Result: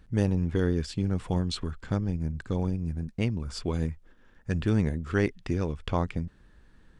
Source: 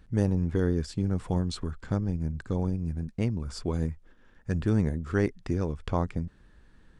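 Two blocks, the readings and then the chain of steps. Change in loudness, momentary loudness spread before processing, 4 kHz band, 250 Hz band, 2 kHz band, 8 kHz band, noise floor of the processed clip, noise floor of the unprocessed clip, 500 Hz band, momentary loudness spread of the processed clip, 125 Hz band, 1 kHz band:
0.0 dB, 7 LU, +4.5 dB, 0.0 dB, +3.0 dB, +1.0 dB, −58 dBFS, −58 dBFS, 0.0 dB, 7 LU, 0.0 dB, +1.0 dB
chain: dynamic equaliser 2,900 Hz, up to +8 dB, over −56 dBFS, Q 1.2

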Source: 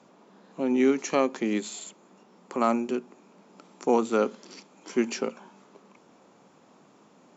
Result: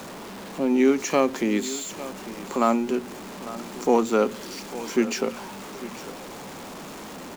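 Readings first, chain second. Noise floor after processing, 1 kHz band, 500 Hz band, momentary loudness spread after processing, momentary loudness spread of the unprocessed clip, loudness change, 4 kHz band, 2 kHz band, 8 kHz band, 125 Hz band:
−39 dBFS, +3.5 dB, +3.5 dB, 18 LU, 15 LU, +2.5 dB, +6.5 dB, +4.5 dB, can't be measured, +5.5 dB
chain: converter with a step at zero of −36.5 dBFS
single-tap delay 850 ms −15.5 dB
level +2.5 dB

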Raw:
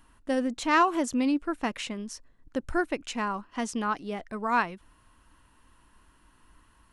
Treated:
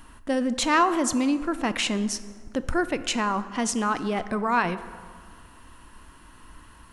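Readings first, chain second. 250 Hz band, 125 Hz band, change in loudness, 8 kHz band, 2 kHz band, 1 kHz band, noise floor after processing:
+3.5 dB, +8.5 dB, +3.5 dB, +10.0 dB, +3.0 dB, +2.5 dB, −50 dBFS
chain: in parallel at 0 dB: compressor whose output falls as the input rises −36 dBFS, ratio −1
on the sum: dense smooth reverb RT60 2 s, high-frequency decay 0.5×, DRR 12.5 dB
level +1 dB

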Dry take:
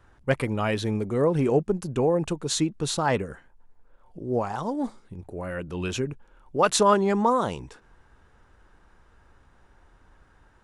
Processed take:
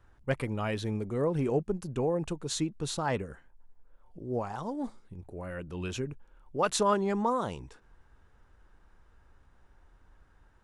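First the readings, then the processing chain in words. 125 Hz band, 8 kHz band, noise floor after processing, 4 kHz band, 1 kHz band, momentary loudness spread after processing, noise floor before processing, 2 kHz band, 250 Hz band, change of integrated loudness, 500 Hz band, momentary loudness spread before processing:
−5.5 dB, −7.0 dB, −62 dBFS, −7.0 dB, −7.0 dB, 14 LU, −59 dBFS, −7.0 dB, −6.5 dB, −6.5 dB, −7.0 dB, 14 LU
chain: low-shelf EQ 80 Hz +6.5 dB
level −7 dB

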